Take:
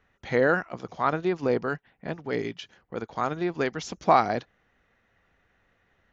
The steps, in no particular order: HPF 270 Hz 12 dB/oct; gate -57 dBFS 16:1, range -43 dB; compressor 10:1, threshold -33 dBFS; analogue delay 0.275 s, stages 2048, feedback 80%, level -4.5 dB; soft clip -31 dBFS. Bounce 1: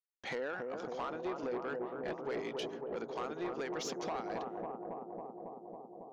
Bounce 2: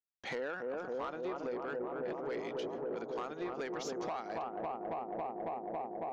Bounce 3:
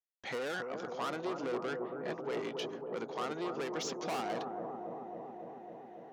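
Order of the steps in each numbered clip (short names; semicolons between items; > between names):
HPF > gate > compressor > analogue delay > soft clip; HPF > gate > analogue delay > compressor > soft clip; soft clip > HPF > compressor > analogue delay > gate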